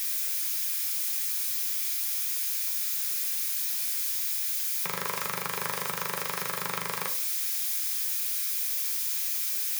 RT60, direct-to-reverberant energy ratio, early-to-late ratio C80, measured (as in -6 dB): 0.45 s, 4.0 dB, 15.5 dB